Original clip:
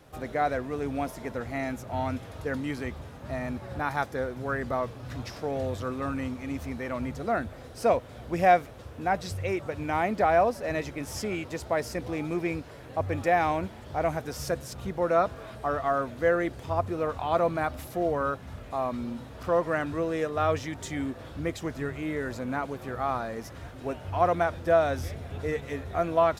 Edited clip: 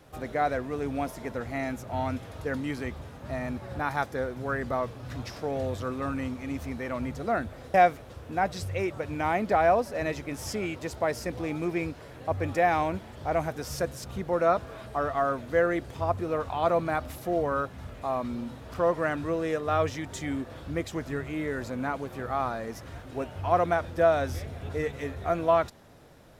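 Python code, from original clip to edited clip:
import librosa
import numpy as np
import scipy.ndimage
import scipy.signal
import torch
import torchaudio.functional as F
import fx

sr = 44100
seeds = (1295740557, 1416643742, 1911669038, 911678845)

y = fx.edit(x, sr, fx.cut(start_s=7.74, length_s=0.69), tone=tone)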